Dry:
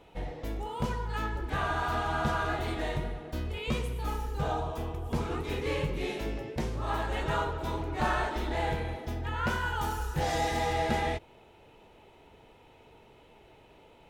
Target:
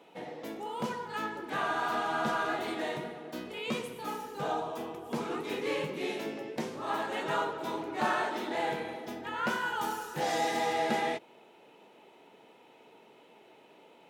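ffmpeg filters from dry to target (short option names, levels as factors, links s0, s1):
-af "highpass=f=190:w=0.5412,highpass=f=190:w=1.3066"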